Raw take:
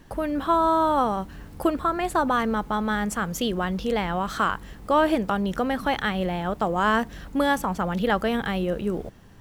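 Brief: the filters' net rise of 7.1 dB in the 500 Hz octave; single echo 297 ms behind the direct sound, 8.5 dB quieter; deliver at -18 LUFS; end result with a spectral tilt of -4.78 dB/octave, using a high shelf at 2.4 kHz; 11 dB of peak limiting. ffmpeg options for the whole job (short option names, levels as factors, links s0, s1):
-af "equalizer=f=500:t=o:g=8.5,highshelf=f=2400:g=7.5,alimiter=limit=0.178:level=0:latency=1,aecho=1:1:297:0.376,volume=2.11"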